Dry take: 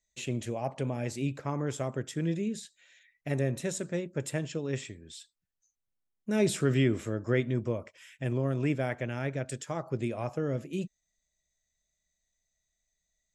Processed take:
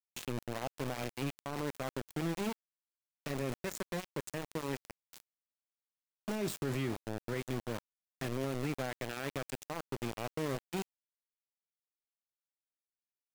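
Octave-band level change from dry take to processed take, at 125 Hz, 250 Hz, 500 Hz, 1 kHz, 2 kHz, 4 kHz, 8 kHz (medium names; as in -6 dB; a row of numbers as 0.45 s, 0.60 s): -9.5 dB, -7.5 dB, -7.0 dB, -1.5 dB, -4.0 dB, -2.0 dB, -6.0 dB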